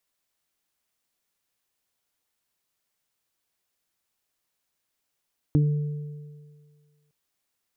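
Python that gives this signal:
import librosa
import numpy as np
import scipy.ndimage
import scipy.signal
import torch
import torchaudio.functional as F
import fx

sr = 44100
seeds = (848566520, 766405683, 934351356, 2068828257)

y = fx.additive(sr, length_s=1.56, hz=148.0, level_db=-16.0, upper_db=(-2.0, -17.5), decay_s=1.77, upper_decays_s=(0.22, 2.1))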